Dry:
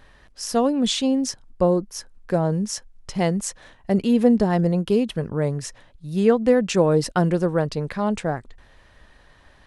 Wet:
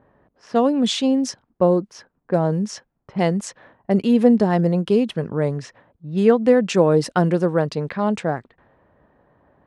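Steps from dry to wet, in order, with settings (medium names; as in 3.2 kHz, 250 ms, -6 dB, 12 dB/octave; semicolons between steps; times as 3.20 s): level-controlled noise filter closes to 720 Hz, open at -19 dBFS; high-pass 130 Hz 12 dB/octave; treble shelf 6.2 kHz -8 dB; trim +2.5 dB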